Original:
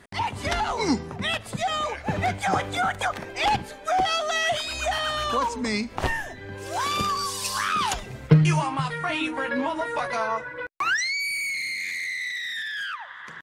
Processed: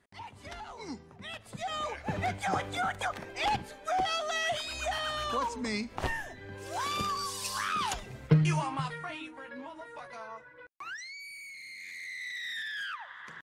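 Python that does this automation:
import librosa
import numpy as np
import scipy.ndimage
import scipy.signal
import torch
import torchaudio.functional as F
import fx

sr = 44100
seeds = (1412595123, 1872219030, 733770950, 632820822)

y = fx.gain(x, sr, db=fx.line((1.15, -18.0), (1.85, -7.0), (8.85, -7.0), (9.31, -17.5), (11.57, -17.5), (12.5, -6.0)))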